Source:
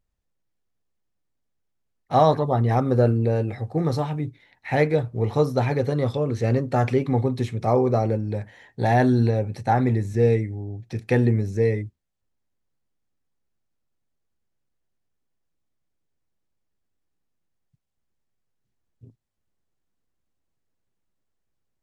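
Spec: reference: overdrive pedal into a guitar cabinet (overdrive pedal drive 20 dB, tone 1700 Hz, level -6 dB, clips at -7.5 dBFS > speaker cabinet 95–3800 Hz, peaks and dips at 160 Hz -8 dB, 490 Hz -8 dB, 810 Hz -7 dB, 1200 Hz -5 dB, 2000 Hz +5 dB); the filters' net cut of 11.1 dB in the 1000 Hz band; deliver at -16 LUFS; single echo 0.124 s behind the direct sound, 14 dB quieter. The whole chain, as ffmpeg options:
-filter_complex "[0:a]equalizer=f=1k:t=o:g=-8,aecho=1:1:124:0.2,asplit=2[a][b];[b]highpass=f=720:p=1,volume=20dB,asoftclip=type=tanh:threshold=-7.5dB[c];[a][c]amix=inputs=2:normalize=0,lowpass=f=1.7k:p=1,volume=-6dB,highpass=95,equalizer=f=160:t=q:w=4:g=-8,equalizer=f=490:t=q:w=4:g=-8,equalizer=f=810:t=q:w=4:g=-7,equalizer=f=1.2k:t=q:w=4:g=-5,equalizer=f=2k:t=q:w=4:g=5,lowpass=f=3.8k:w=0.5412,lowpass=f=3.8k:w=1.3066,volume=7.5dB"

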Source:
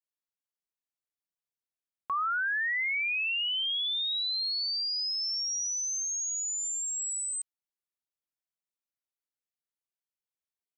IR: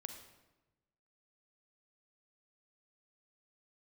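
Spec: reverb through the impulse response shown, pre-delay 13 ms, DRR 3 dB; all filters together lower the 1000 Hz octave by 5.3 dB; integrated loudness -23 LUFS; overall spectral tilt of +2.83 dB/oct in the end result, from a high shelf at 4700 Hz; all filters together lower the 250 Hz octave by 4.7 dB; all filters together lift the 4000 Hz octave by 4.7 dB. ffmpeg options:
-filter_complex "[0:a]equalizer=f=250:t=o:g=-6,equalizer=f=1k:t=o:g=-8.5,equalizer=f=4k:t=o:g=3,highshelf=f=4.7k:g=6.5,asplit=2[a][b];[1:a]atrim=start_sample=2205,adelay=13[c];[b][c]afir=irnorm=-1:irlink=0,volume=0.5dB[d];[a][d]amix=inputs=2:normalize=0,volume=-0.5dB"

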